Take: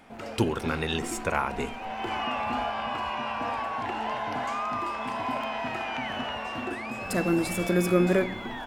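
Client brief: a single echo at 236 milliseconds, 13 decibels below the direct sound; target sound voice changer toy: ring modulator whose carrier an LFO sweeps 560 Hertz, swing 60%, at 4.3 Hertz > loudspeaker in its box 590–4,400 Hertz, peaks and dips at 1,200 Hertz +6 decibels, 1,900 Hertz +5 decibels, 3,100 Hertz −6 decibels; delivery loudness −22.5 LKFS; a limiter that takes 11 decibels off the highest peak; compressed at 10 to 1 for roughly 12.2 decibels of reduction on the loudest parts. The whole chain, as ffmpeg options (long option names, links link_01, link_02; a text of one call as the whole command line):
ffmpeg -i in.wav -af "acompressor=threshold=-30dB:ratio=10,alimiter=level_in=4dB:limit=-24dB:level=0:latency=1,volume=-4dB,aecho=1:1:236:0.224,aeval=exprs='val(0)*sin(2*PI*560*n/s+560*0.6/4.3*sin(2*PI*4.3*n/s))':channel_layout=same,highpass=590,equalizer=frequency=1200:width_type=q:width=4:gain=6,equalizer=frequency=1900:width_type=q:width=4:gain=5,equalizer=frequency=3100:width_type=q:width=4:gain=-6,lowpass=frequency=4400:width=0.5412,lowpass=frequency=4400:width=1.3066,volume=16dB" out.wav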